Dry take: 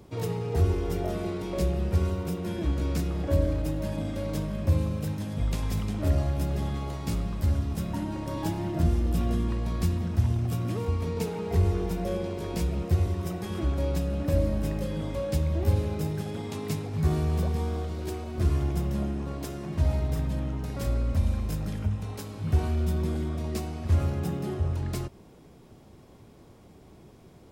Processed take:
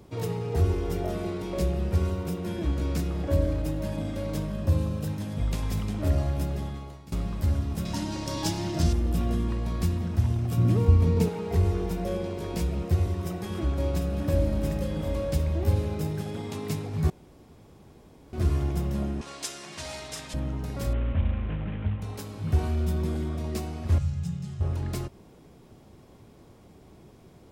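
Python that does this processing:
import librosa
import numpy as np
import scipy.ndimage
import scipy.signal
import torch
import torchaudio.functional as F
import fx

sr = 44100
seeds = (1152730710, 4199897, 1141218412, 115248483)

y = fx.notch(x, sr, hz=2200.0, q=6.7, at=(4.52, 5.1))
y = fx.peak_eq(y, sr, hz=5400.0, db=15.0, octaves=1.6, at=(7.85, 8.93))
y = fx.low_shelf(y, sr, hz=320.0, db=10.5, at=(10.57, 11.29))
y = fx.echo_single(y, sr, ms=748, db=-8.0, at=(13.05, 15.53))
y = fx.weighting(y, sr, curve='ITU-R 468', at=(19.21, 20.34))
y = fx.cvsd(y, sr, bps=16000, at=(20.93, 22.02))
y = fx.curve_eq(y, sr, hz=(180.0, 270.0, 7400.0, 12000.0), db=(0, -25, 1, -14), at=(23.98, 24.61))
y = fx.edit(y, sr, fx.fade_out_to(start_s=6.39, length_s=0.73, floor_db=-19.0),
    fx.room_tone_fill(start_s=17.1, length_s=1.23), tone=tone)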